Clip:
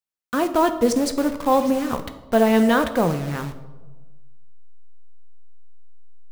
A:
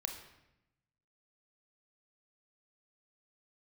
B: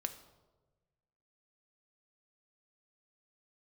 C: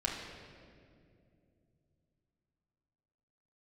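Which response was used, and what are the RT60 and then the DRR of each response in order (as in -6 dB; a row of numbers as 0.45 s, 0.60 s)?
B; 0.85 s, 1.2 s, 2.5 s; 4.0 dB, 7.5 dB, -2.0 dB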